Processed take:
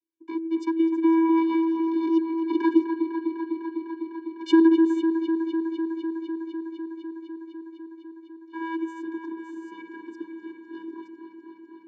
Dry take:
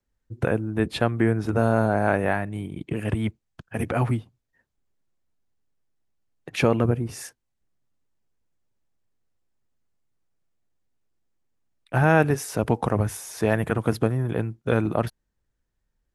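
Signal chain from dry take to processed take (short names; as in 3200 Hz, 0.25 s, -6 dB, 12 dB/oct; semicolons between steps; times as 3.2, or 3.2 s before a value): speed glide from 151% -> 121%; Doppler pass-by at 3.69, 6 m/s, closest 5.6 m; vocoder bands 16, square 327 Hz; on a send: dark delay 0.251 s, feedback 83%, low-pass 3200 Hz, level -8 dB; on the sum: gain +8 dB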